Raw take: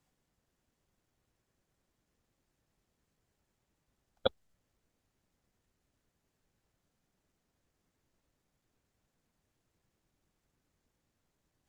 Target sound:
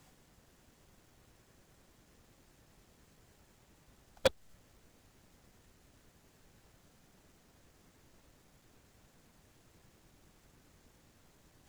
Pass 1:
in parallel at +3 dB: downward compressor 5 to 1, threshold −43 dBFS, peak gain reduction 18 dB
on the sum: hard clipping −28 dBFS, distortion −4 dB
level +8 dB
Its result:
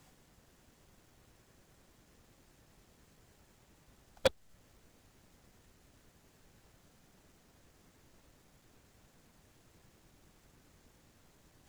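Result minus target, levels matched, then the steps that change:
downward compressor: peak gain reduction +5.5 dB
change: downward compressor 5 to 1, threshold −36 dBFS, peak gain reduction 12.5 dB

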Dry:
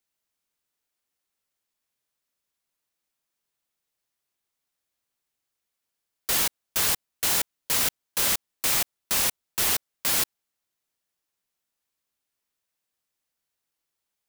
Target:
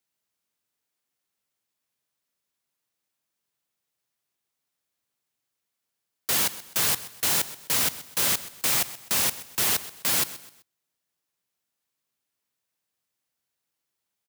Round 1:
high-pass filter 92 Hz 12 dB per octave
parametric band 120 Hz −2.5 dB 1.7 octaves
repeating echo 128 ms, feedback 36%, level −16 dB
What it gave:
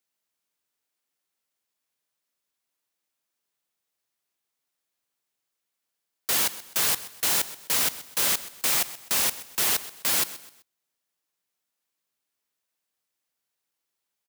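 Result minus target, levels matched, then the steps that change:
125 Hz band −5.5 dB
change: parametric band 120 Hz +4 dB 1.7 octaves

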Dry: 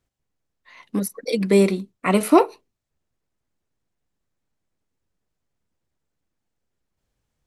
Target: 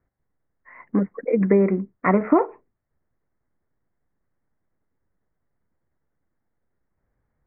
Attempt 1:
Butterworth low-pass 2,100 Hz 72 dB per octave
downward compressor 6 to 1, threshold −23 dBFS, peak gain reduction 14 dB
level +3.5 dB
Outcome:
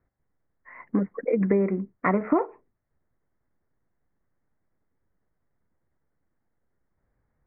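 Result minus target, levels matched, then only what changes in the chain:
downward compressor: peak gain reduction +5.5 dB
change: downward compressor 6 to 1, threshold −16.5 dBFS, peak gain reduction 8.5 dB

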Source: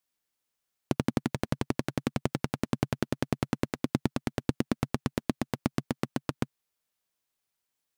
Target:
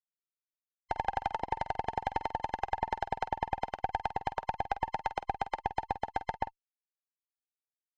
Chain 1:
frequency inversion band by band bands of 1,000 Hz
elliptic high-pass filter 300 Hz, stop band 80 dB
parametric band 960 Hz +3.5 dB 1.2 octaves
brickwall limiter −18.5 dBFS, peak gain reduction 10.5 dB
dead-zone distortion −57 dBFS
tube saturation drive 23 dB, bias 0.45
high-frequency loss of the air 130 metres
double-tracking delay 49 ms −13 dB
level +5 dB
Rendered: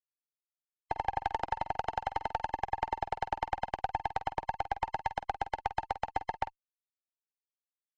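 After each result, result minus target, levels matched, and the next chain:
dead-zone distortion: distortion +9 dB; 250 Hz band −3.0 dB
frequency inversion band by band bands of 1,000 Hz
elliptic high-pass filter 300 Hz, stop band 80 dB
parametric band 960 Hz +3.5 dB 1.2 octaves
brickwall limiter −18.5 dBFS, peak gain reduction 10.5 dB
dead-zone distortion −68 dBFS
tube saturation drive 23 dB, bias 0.45
high-frequency loss of the air 130 metres
double-tracking delay 49 ms −13 dB
level +5 dB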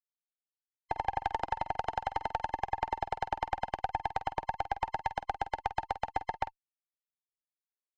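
250 Hz band −3.0 dB
frequency inversion band by band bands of 1,000 Hz
parametric band 960 Hz +3.5 dB 1.2 octaves
brickwall limiter −18.5 dBFS, peak gain reduction 10 dB
dead-zone distortion −68 dBFS
tube saturation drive 23 dB, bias 0.45
high-frequency loss of the air 130 metres
double-tracking delay 49 ms −13 dB
level +5 dB

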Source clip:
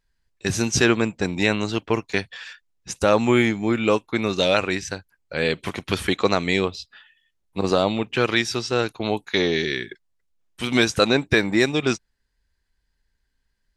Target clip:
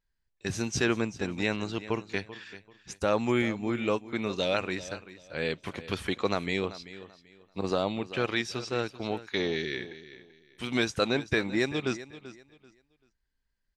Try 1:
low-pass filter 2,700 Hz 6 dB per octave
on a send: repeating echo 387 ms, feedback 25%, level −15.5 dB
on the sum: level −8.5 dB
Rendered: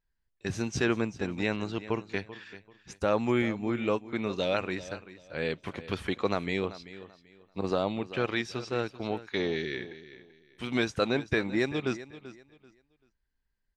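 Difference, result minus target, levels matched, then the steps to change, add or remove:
8,000 Hz band −5.0 dB
change: low-pass filter 6,900 Hz 6 dB per octave

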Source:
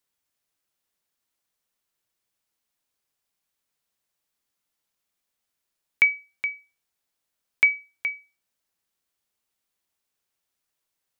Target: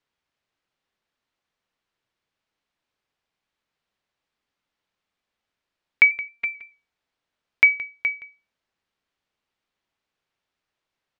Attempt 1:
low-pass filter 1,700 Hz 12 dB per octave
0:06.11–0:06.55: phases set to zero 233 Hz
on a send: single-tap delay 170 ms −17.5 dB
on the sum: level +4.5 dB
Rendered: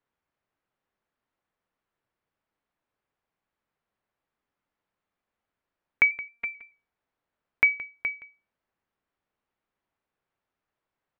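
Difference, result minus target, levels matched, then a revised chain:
4,000 Hz band −3.0 dB
low-pass filter 3,500 Hz 12 dB per octave
0:06.11–0:06.55: phases set to zero 233 Hz
on a send: single-tap delay 170 ms −17.5 dB
on the sum: level +4.5 dB

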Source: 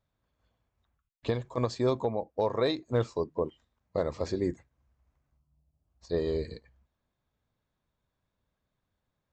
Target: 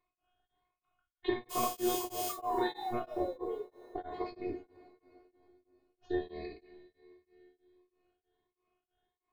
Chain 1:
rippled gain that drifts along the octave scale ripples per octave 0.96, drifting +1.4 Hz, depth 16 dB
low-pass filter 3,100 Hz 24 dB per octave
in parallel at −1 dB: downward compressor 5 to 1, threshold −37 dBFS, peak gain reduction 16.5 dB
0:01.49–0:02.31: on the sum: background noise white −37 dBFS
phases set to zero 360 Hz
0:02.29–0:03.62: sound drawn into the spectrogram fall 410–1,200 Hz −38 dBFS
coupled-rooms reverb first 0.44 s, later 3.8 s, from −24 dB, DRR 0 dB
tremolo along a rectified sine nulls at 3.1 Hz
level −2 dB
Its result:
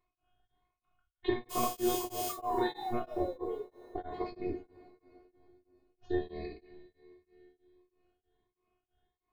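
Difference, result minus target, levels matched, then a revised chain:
125 Hz band +4.0 dB
rippled gain that drifts along the octave scale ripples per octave 0.96, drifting +1.4 Hz, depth 16 dB
low-pass filter 3,100 Hz 24 dB per octave
low-shelf EQ 150 Hz −11.5 dB
in parallel at −1 dB: downward compressor 5 to 1, threshold −37 dBFS, peak gain reduction 15 dB
0:01.49–0:02.31: on the sum: background noise white −37 dBFS
phases set to zero 360 Hz
0:02.29–0:03.62: sound drawn into the spectrogram fall 410–1,200 Hz −38 dBFS
coupled-rooms reverb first 0.44 s, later 3.8 s, from −24 dB, DRR 0 dB
tremolo along a rectified sine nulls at 3.1 Hz
level −2 dB

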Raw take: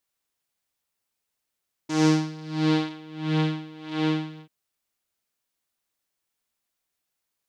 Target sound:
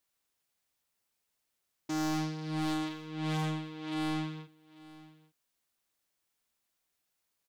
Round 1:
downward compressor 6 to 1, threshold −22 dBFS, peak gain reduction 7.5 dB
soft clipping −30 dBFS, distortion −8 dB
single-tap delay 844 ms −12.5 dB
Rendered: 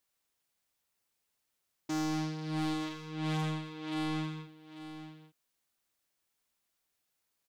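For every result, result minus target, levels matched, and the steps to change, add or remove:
downward compressor: peak gain reduction +7.5 dB; echo-to-direct +7.5 dB
remove: downward compressor 6 to 1, threshold −22 dBFS, peak gain reduction 7.5 dB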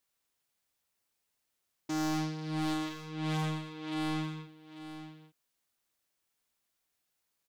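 echo-to-direct +7.5 dB
change: single-tap delay 844 ms −20 dB

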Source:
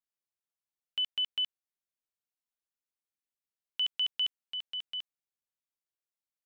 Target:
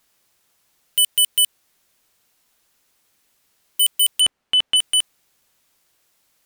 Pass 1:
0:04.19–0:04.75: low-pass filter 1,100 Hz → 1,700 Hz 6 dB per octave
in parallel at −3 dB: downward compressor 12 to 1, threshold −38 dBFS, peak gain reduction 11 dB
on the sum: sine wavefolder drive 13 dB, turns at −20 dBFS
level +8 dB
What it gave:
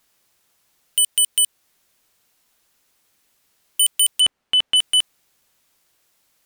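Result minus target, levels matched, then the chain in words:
downward compressor: peak gain reduction +5.5 dB
0:04.19–0:04.75: low-pass filter 1,100 Hz → 1,700 Hz 6 dB per octave
in parallel at −3 dB: downward compressor 12 to 1, threshold −32 dBFS, peak gain reduction 5.5 dB
on the sum: sine wavefolder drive 13 dB, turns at −20 dBFS
level +8 dB

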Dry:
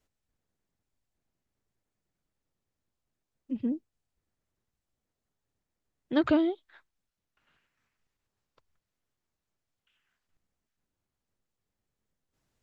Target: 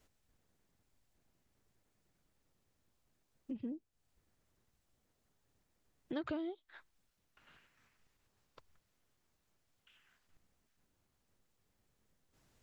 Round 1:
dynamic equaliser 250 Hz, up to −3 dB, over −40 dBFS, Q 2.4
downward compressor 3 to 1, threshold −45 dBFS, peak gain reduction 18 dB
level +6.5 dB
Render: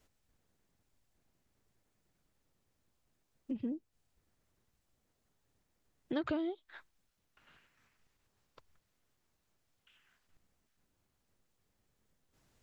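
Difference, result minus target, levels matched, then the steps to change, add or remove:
downward compressor: peak gain reduction −4.5 dB
change: downward compressor 3 to 1, threshold −51.5 dBFS, peak gain reduction 22 dB

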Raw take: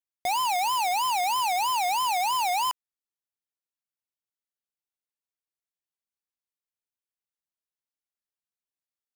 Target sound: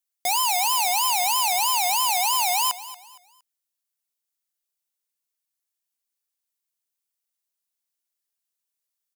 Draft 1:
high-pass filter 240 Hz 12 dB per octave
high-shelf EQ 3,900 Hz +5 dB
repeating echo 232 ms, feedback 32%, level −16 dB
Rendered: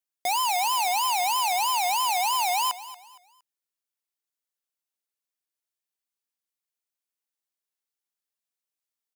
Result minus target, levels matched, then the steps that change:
8,000 Hz band −2.5 dB
change: high-shelf EQ 3,900 Hz +12.5 dB

